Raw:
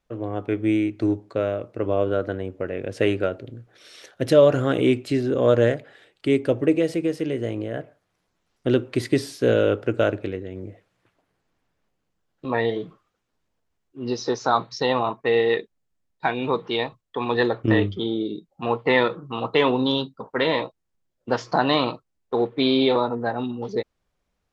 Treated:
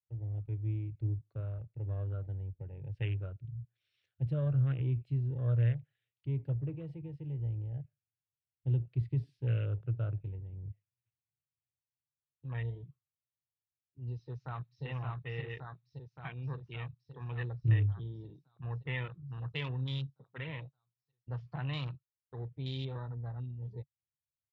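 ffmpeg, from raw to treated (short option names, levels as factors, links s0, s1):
-filter_complex "[0:a]asplit=2[s0][s1];[s1]afade=t=in:st=14.2:d=0.01,afade=t=out:st=14.84:d=0.01,aecho=0:1:570|1140|1710|2280|2850|3420|3990|4560|5130|5700|6270|6840:0.749894|0.562421|0.421815|0.316362|0.237271|0.177953|0.133465|0.100099|0.0750741|0.0563056|0.0422292|0.0316719[s2];[s0][s2]amix=inputs=2:normalize=0,highpass=f=87:w=0.5412,highpass=f=87:w=1.3066,afwtdn=0.0398,firequalizer=gain_entry='entry(140,0);entry(200,-26);entry(660,-28);entry(2600,-12);entry(6400,-30)':delay=0.05:min_phase=1"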